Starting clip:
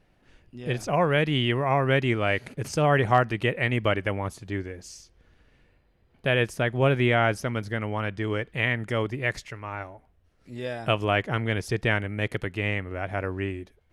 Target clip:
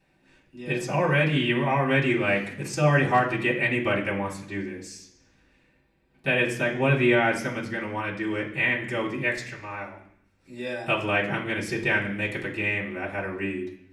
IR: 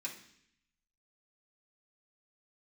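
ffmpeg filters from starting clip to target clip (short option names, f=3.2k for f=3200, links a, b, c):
-filter_complex "[1:a]atrim=start_sample=2205[a];[0:a][a]afir=irnorm=-1:irlink=0,volume=2.5dB"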